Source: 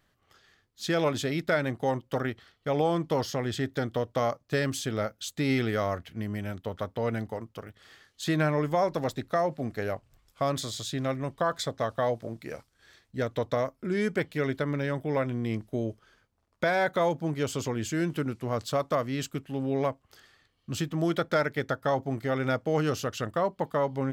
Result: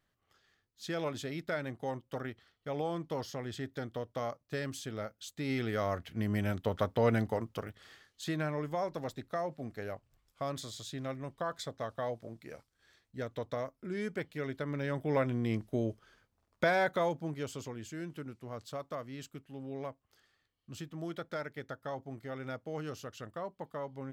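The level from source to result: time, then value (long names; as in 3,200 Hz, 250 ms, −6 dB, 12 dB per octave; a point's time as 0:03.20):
0:05.38 −9.5 dB
0:06.39 +2 dB
0:07.61 +2 dB
0:08.38 −9 dB
0:14.53 −9 dB
0:15.13 −2 dB
0:16.66 −2 dB
0:17.85 −13 dB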